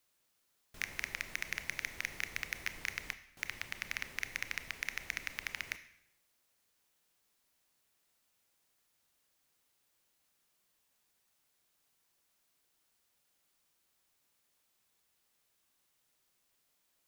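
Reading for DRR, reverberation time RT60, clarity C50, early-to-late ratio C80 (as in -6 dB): 11.5 dB, 0.80 s, 13.5 dB, 16.0 dB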